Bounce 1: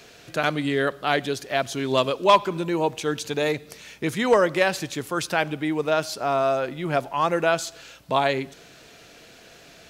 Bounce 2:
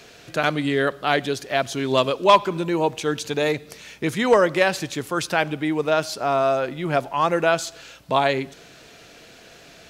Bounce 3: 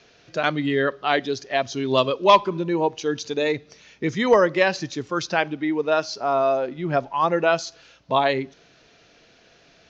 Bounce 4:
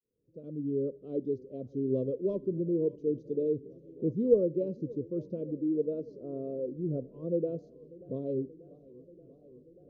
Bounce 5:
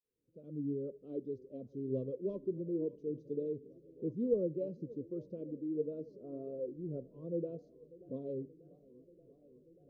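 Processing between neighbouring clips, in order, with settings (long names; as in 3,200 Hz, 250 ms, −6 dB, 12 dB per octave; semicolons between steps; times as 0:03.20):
high-shelf EQ 11,000 Hz −3.5 dB; level +2 dB
Butterworth low-pass 6,500 Hz 72 dB per octave; noise reduction from a noise print of the clip's start 8 dB
fade in at the beginning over 1.05 s; elliptic low-pass filter 500 Hz, stop band 40 dB; feedback echo with a swinging delay time 584 ms, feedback 77%, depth 134 cents, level −22 dB; level −5 dB
flanger 0.76 Hz, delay 1.5 ms, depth 5.9 ms, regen +58%; level −2.5 dB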